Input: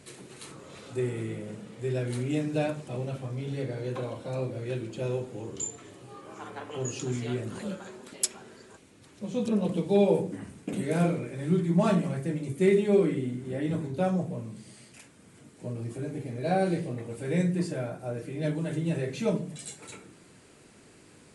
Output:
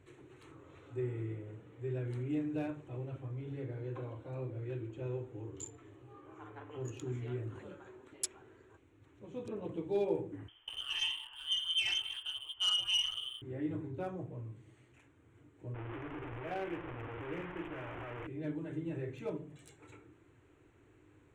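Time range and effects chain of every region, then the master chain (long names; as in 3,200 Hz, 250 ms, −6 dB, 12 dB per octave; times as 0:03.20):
0:10.48–0:13.42: voice inversion scrambler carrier 3,300 Hz + saturating transformer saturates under 2,700 Hz
0:15.74–0:18.27: linear delta modulator 16 kbit/s, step −25.5 dBFS + low-shelf EQ 270 Hz −8.5 dB + one half of a high-frequency compander decoder only
whole clip: adaptive Wiener filter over 9 samples; drawn EQ curve 110 Hz 0 dB, 210 Hz −21 dB, 300 Hz −2 dB, 600 Hz −12 dB, 930 Hz −7 dB; level −2 dB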